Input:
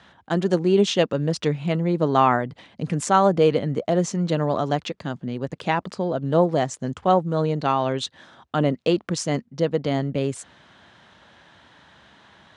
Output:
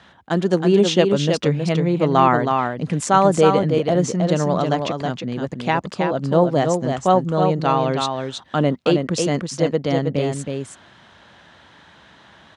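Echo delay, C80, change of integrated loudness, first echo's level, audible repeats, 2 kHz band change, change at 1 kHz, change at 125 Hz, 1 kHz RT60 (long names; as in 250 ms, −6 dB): 320 ms, no reverb audible, +3.5 dB, −5.0 dB, 1, +3.5 dB, +3.5 dB, +3.5 dB, no reverb audible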